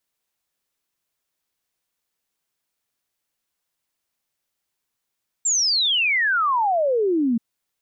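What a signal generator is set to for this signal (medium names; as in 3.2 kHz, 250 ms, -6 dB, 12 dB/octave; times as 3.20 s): log sweep 7.6 kHz -> 220 Hz 1.93 s -17 dBFS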